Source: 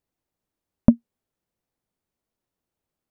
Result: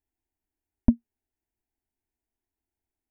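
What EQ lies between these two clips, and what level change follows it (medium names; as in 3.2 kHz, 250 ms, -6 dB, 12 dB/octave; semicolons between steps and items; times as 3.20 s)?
bass shelf 170 Hz +9.5 dB; static phaser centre 800 Hz, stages 8; -5.0 dB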